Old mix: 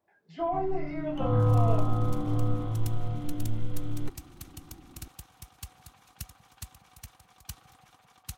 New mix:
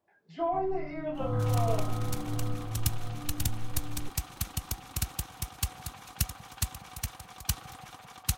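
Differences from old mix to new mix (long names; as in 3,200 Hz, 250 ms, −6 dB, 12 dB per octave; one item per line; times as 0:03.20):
first sound −5.5 dB
second sound +11.5 dB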